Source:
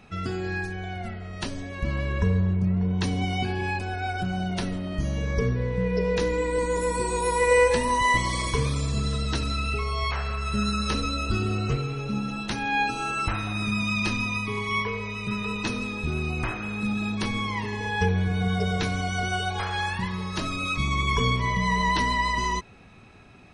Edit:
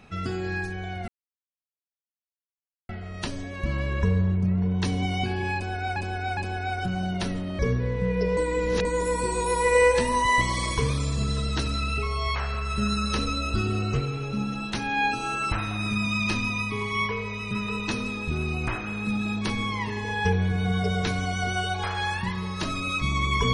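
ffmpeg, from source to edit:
-filter_complex "[0:a]asplit=7[s0][s1][s2][s3][s4][s5][s6];[s0]atrim=end=1.08,asetpts=PTS-STARTPTS,afade=t=out:st=1.076:d=0.004:c=hsin,apad=pad_dur=1.81[s7];[s1]atrim=start=1.08:end=4.152,asetpts=PTS-STARTPTS,afade=t=in:d=0.004:c=hsin[s8];[s2]atrim=start=3.738:end=4.152[s9];[s3]atrim=start=3.738:end=4.962[s10];[s4]atrim=start=5.348:end=6.132[s11];[s5]atrim=start=6.128:end=6.612,asetpts=PTS-STARTPTS,areverse[s12];[s6]atrim=start=6.608[s13];[s7][s8]concat=n=2:v=0:a=1[s14];[s14][s9]acrossfade=d=0.004:c1=hsin:c2=hsin[s15];[s15][s10]acrossfade=d=0.004:c1=hsin:c2=hsin[s16];[s16][s11]acrossfade=d=0.004:c1=hsin:c2=hsin[s17];[s17][s12]acrossfade=d=0.004:c1=hsin:c2=hsin[s18];[s18][s13]acrossfade=d=0.004:c1=hsin:c2=hsin"

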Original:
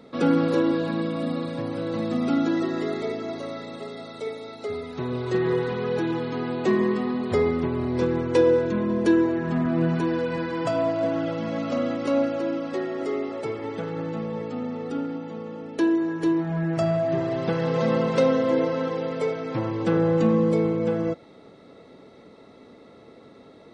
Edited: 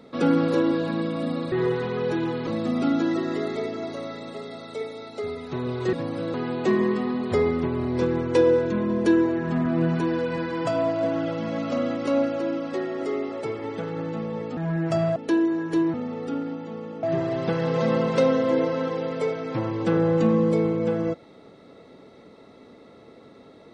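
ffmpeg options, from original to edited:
-filter_complex "[0:a]asplit=9[s0][s1][s2][s3][s4][s5][s6][s7][s8];[s0]atrim=end=1.522[s9];[s1]atrim=start=5.388:end=6.342[s10];[s2]atrim=start=1.928:end=5.392[s11];[s3]atrim=start=1.518:end=1.932[s12];[s4]atrim=start=6.338:end=14.572[s13];[s5]atrim=start=16.438:end=17.032[s14];[s6]atrim=start=15.658:end=16.442[s15];[s7]atrim=start=14.568:end=15.662[s16];[s8]atrim=start=17.028[s17];[s9][s10]acrossfade=d=0.004:c1=hsin:c2=hsin[s18];[s18][s11]acrossfade=d=0.004:c1=hsin:c2=hsin[s19];[s19][s12]acrossfade=d=0.004:c1=hsin:c2=hsin[s20];[s20][s13]acrossfade=d=0.004:c1=hsin:c2=hsin[s21];[s21][s14]acrossfade=d=0.004:c1=hsin:c2=hsin[s22];[s22][s15]acrossfade=d=0.004:c1=hsin:c2=hsin[s23];[s23][s16]acrossfade=d=0.004:c1=hsin:c2=hsin[s24];[s24][s17]acrossfade=d=0.004:c1=hsin:c2=hsin"

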